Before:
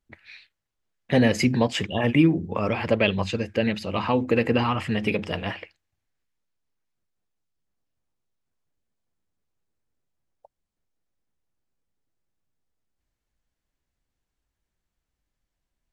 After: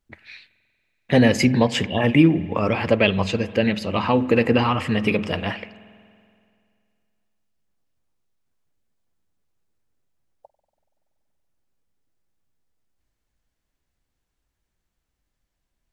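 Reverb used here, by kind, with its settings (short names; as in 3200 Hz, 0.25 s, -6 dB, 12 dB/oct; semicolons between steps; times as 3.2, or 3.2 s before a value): spring tank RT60 2.3 s, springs 47 ms, chirp 35 ms, DRR 17 dB; gain +3.5 dB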